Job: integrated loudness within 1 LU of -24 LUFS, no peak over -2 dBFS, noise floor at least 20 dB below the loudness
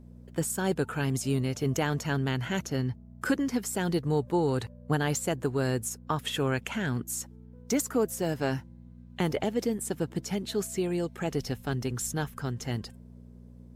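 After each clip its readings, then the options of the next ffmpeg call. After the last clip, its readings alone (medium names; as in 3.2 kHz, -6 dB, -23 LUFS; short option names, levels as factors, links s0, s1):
hum 60 Hz; highest harmonic 240 Hz; hum level -48 dBFS; loudness -30.5 LUFS; peak level -15.5 dBFS; loudness target -24.0 LUFS
-> -af "bandreject=f=60:t=h:w=4,bandreject=f=120:t=h:w=4,bandreject=f=180:t=h:w=4,bandreject=f=240:t=h:w=4"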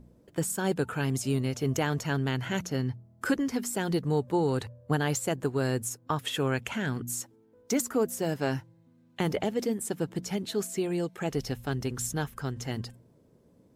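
hum not found; loudness -30.5 LUFS; peak level -15.0 dBFS; loudness target -24.0 LUFS
-> -af "volume=2.11"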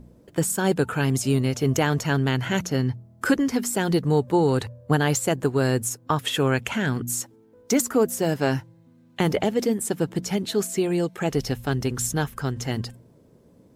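loudness -24.0 LUFS; peak level -8.5 dBFS; noise floor -55 dBFS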